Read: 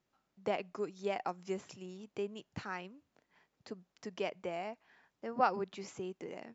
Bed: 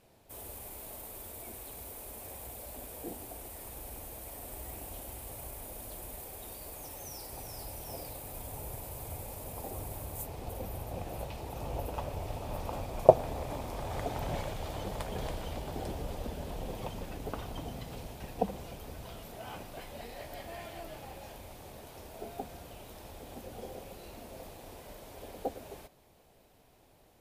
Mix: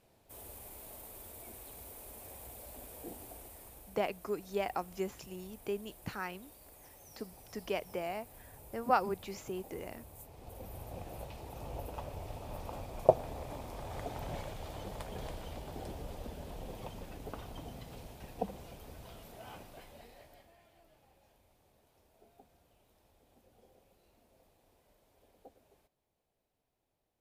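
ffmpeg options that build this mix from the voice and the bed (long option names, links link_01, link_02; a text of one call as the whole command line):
ffmpeg -i stem1.wav -i stem2.wav -filter_complex "[0:a]adelay=3500,volume=1.5dB[link_01];[1:a]volume=2dB,afade=type=out:start_time=3.3:duration=0.67:silence=0.421697,afade=type=in:start_time=10.31:duration=0.54:silence=0.473151,afade=type=out:start_time=19.5:duration=1.05:silence=0.16788[link_02];[link_01][link_02]amix=inputs=2:normalize=0" out.wav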